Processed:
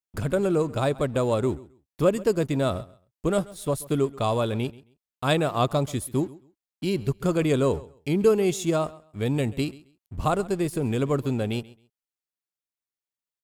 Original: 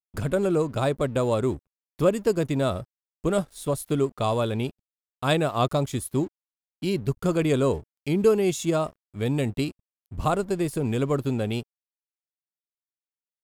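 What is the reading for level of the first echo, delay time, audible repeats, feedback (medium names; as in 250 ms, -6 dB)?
-20.5 dB, 134 ms, 2, 20%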